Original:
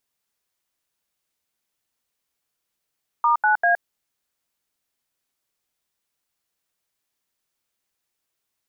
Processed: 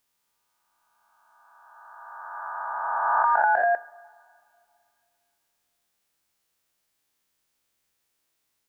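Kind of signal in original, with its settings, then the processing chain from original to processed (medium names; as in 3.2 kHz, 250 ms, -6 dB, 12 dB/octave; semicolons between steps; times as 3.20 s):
DTMF "*9A", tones 117 ms, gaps 80 ms, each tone -17.5 dBFS
reverse spectral sustain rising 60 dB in 2.61 s; dynamic bell 1.6 kHz, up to -6 dB, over -34 dBFS, Q 1.2; two-slope reverb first 0.43 s, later 2.6 s, from -20 dB, DRR 13 dB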